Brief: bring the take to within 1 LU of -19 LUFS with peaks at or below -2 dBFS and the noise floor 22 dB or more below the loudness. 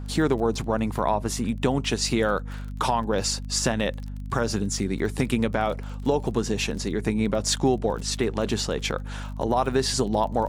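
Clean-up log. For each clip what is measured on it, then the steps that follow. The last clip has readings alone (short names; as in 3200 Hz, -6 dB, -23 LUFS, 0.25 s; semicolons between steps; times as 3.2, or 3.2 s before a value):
ticks 26/s; hum 50 Hz; harmonics up to 250 Hz; hum level -31 dBFS; loudness -25.5 LUFS; peak -9.5 dBFS; loudness target -19.0 LUFS
-> de-click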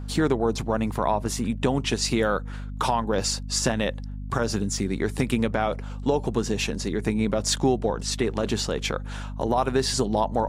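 ticks 0/s; hum 50 Hz; harmonics up to 250 Hz; hum level -31 dBFS
-> notches 50/100/150/200/250 Hz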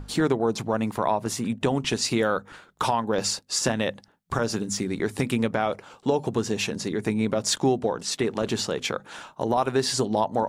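hum none; loudness -26.0 LUFS; peak -10.0 dBFS; loudness target -19.0 LUFS
-> gain +7 dB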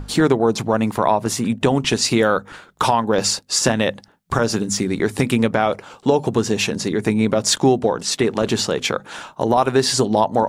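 loudness -19.0 LUFS; peak -3.0 dBFS; noise floor -51 dBFS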